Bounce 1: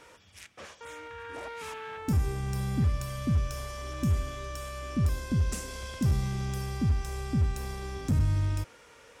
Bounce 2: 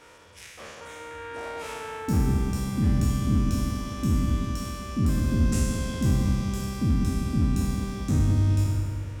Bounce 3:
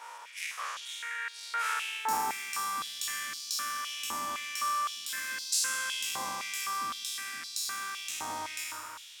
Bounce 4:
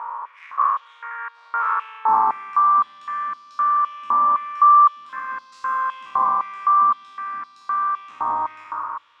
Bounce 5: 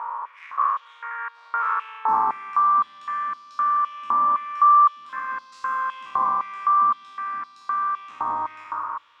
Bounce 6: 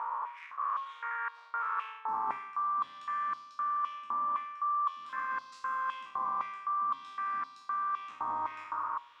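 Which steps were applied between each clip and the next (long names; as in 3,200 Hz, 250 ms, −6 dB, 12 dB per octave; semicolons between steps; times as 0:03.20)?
peak hold with a decay on every bin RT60 1.53 s; feedback echo with a low-pass in the loop 193 ms, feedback 55%, low-pass 1,200 Hz, level −4 dB
high-shelf EQ 5,500 Hz +6.5 dB; high-pass on a step sequencer 3.9 Hz 900–4,300 Hz
upward compression, threshold −45 dBFS; low-pass with resonance 1,100 Hz, resonance Q 10; level +4.5 dB
dynamic equaliser 810 Hz, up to −4 dB, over −27 dBFS, Q 1
hum removal 136.2 Hz, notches 8; reversed playback; downward compressor 5 to 1, threshold −29 dBFS, peak gain reduction 14.5 dB; reversed playback; level −2.5 dB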